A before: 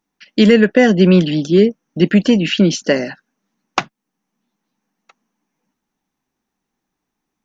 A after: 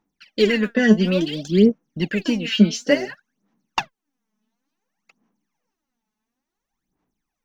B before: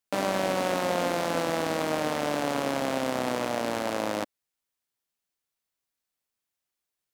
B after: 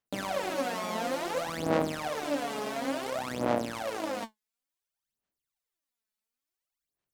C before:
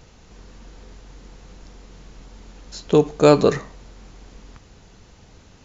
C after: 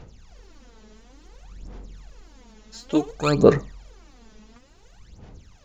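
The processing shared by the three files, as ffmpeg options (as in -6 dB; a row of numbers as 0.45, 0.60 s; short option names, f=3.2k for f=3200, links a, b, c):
-af "aphaser=in_gain=1:out_gain=1:delay=4.7:decay=0.78:speed=0.57:type=sinusoidal,volume=-8.5dB"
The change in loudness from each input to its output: -5.5, -4.0, -3.0 LU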